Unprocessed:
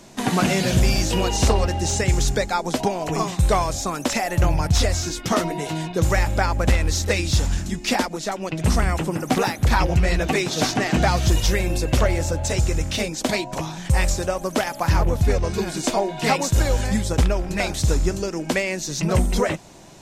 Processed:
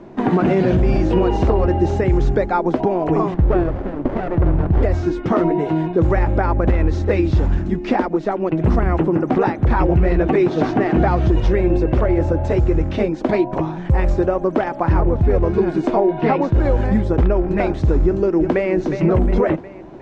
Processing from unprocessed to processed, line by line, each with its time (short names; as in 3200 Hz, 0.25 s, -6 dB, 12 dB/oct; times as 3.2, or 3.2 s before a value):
3.34–4.83 running maximum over 33 samples
16.12–16.6 LPF 4800 Hz
18.04–18.73 echo throw 0.36 s, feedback 50%, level -9.5 dB
whole clip: LPF 1400 Hz 12 dB/oct; bell 350 Hz +8.5 dB 0.55 oct; limiter -12 dBFS; gain +5 dB